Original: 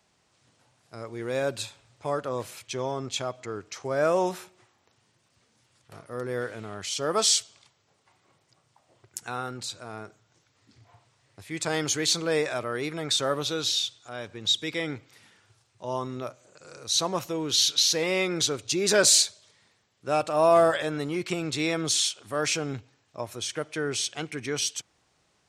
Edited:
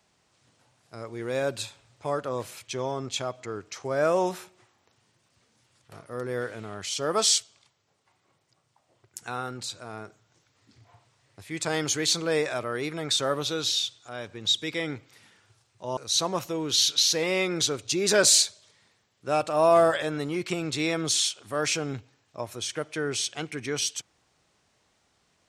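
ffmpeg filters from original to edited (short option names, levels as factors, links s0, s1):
-filter_complex "[0:a]asplit=4[s0][s1][s2][s3];[s0]atrim=end=7.382[s4];[s1]atrim=start=7.378:end=9.202,asetpts=PTS-STARTPTS,volume=0.631[s5];[s2]atrim=start=9.198:end=15.972[s6];[s3]atrim=start=16.768[s7];[s4][s5]acrossfade=d=0.004:c1=hsin:c2=hsin[s8];[s8][s6]acrossfade=d=0.004:c1=hsin:c2=hsin[s9];[s9][s7]acrossfade=d=0.004:c1=hsin:c2=hsin"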